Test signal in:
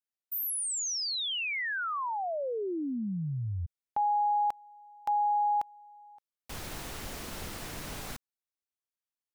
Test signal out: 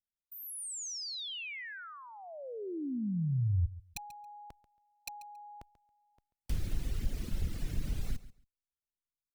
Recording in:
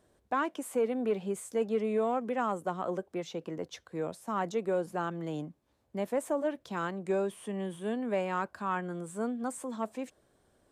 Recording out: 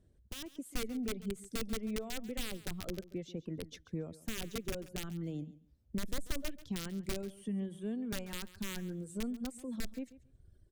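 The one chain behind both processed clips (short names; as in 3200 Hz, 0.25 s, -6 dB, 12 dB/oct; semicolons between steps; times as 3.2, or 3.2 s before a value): reverb removal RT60 1.3 s; high shelf 3400 Hz -8.5 dB; compressor 2:1, threshold -49 dBFS; wrapped overs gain 35 dB; AGC gain up to 9 dB; passive tone stack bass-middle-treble 10-0-1; feedback echo 0.138 s, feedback 17%, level -17 dB; gain +17 dB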